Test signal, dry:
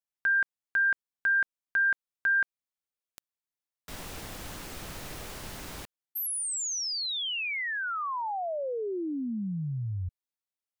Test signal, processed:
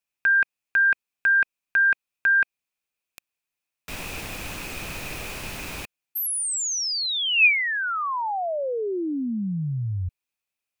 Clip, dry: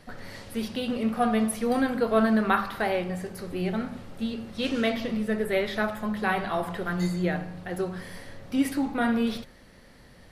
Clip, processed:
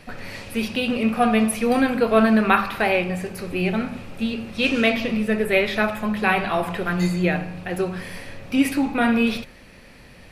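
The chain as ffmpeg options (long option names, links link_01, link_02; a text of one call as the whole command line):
ffmpeg -i in.wav -af "equalizer=frequency=2500:width=6.1:gain=13.5,volume=5.5dB" out.wav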